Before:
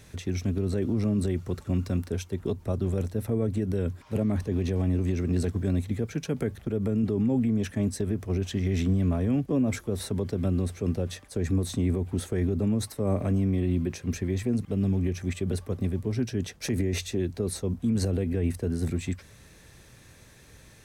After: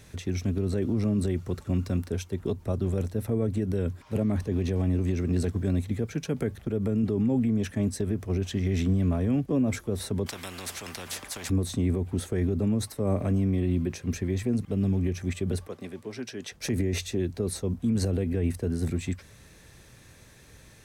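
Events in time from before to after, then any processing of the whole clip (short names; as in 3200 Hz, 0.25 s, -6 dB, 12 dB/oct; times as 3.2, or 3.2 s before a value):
10.26–11.5 spectral compressor 4:1
15.67–16.52 weighting filter A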